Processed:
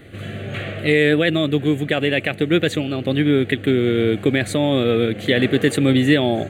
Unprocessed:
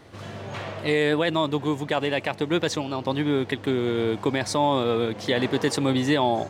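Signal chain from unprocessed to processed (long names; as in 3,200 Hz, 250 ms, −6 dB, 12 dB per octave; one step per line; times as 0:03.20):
phaser with its sweep stopped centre 2,300 Hz, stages 4
level +8.5 dB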